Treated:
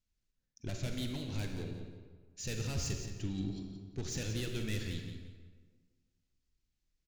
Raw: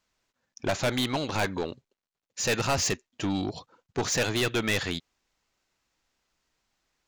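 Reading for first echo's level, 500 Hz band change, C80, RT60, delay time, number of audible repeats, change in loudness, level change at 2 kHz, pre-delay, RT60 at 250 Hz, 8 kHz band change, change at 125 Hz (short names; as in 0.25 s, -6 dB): -9.5 dB, -15.0 dB, 4.5 dB, 1.5 s, 0.174 s, 2, -11.0 dB, -16.5 dB, 36 ms, 1.6 s, -12.0 dB, -3.0 dB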